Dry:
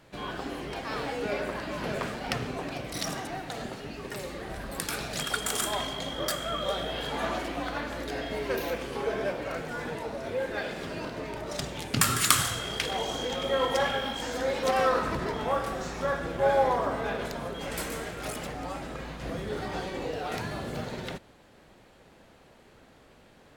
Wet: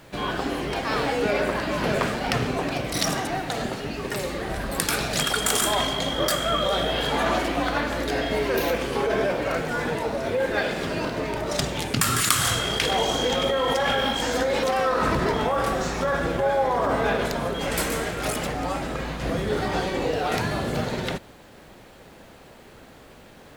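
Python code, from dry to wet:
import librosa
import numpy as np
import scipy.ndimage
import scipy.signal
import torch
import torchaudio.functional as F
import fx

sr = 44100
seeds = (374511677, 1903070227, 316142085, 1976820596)

p1 = fx.over_compress(x, sr, threshold_db=-30.0, ratio=-0.5)
p2 = x + (p1 * librosa.db_to_amplitude(3.0))
y = fx.quant_dither(p2, sr, seeds[0], bits=10, dither='none')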